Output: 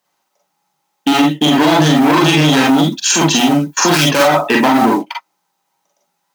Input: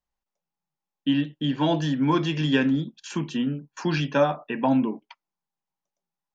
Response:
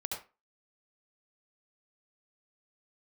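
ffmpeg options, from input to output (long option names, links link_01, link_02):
-filter_complex "[0:a]asoftclip=type=hard:threshold=-26dB,highpass=260,asettb=1/sr,asplit=3[link_01][link_02][link_03];[link_01]atrim=end=2.784[link_04];[link_02]atrim=start=2.78:end=4.23,asetpts=PTS-STARTPTS,afade=type=in:duration=0.004:curve=qsin,afade=type=out:start_time=1.446:duration=0.004:curve=qsin,aemphasis=mode=production:type=50fm[link_05];[link_03]atrim=start=4.226[link_06];[link_04][link_05]acrossfade=duration=0.004:curve1=hsin:curve2=qsin[link_07];[link_07][link_06]acrossfade=duration=0.004:curve1=qsin:curve2=hsin,acrusher=bits=6:mode=log:mix=0:aa=0.000001[link_08];[1:a]atrim=start_sample=2205,atrim=end_sample=4410,asetrate=70560,aresample=44100[link_09];[link_08][link_09]afir=irnorm=-1:irlink=0,alimiter=level_in=27.5dB:limit=-1dB:release=50:level=0:latency=1,volume=-1dB"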